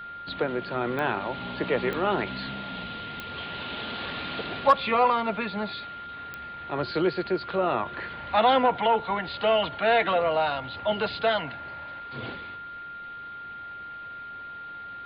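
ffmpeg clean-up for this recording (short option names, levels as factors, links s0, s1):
-af "adeclick=t=4,bandreject=f=1400:w=30"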